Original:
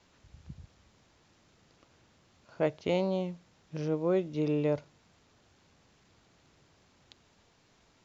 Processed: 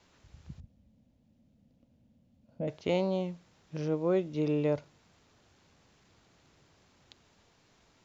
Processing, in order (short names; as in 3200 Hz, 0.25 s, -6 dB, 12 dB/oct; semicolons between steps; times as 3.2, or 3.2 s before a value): 0.6–2.68 EQ curve 160 Hz 0 dB, 240 Hz +8 dB, 380 Hz -17 dB, 540 Hz -4 dB, 1200 Hz -25 dB, 2900 Hz -17 dB, 4700 Hz -20 dB